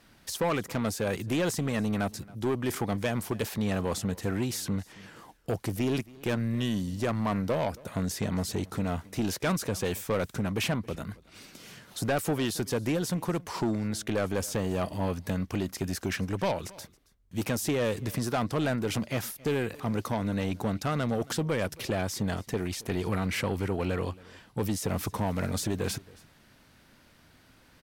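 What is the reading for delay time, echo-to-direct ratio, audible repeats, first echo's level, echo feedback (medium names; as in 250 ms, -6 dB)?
273 ms, -22.5 dB, 1, -22.5 dB, no regular repeats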